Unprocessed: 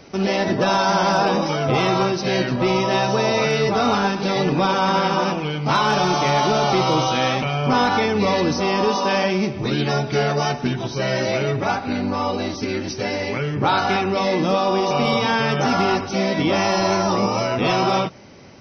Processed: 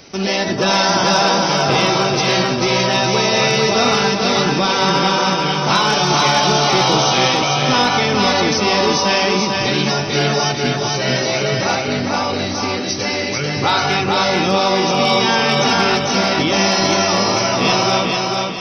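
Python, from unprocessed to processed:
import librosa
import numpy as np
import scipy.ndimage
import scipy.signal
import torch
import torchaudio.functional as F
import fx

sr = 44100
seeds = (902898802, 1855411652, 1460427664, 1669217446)

y = fx.high_shelf(x, sr, hz=2700.0, db=11.5)
y = fx.echo_feedback(y, sr, ms=443, feedback_pct=41, wet_db=-3)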